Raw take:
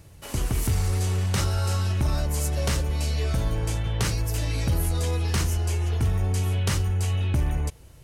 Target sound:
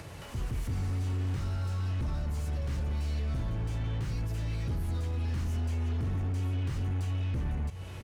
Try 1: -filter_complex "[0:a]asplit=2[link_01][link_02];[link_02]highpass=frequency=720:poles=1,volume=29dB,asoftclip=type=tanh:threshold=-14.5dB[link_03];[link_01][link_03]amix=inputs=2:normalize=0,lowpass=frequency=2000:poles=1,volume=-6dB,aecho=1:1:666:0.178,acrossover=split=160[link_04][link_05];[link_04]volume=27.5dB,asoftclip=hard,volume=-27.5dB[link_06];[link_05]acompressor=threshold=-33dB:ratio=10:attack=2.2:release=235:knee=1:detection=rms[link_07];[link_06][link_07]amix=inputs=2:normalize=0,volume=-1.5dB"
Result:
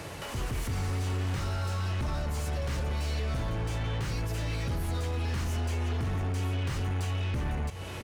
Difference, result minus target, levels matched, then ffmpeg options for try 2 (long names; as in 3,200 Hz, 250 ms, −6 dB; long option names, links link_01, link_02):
downward compressor: peak gain reduction −8 dB
-filter_complex "[0:a]asplit=2[link_01][link_02];[link_02]highpass=frequency=720:poles=1,volume=29dB,asoftclip=type=tanh:threshold=-14.5dB[link_03];[link_01][link_03]amix=inputs=2:normalize=0,lowpass=frequency=2000:poles=1,volume=-6dB,aecho=1:1:666:0.178,acrossover=split=160[link_04][link_05];[link_04]volume=27.5dB,asoftclip=hard,volume=-27.5dB[link_06];[link_05]acompressor=threshold=-42dB:ratio=10:attack=2.2:release=235:knee=1:detection=rms[link_07];[link_06][link_07]amix=inputs=2:normalize=0,volume=-1.5dB"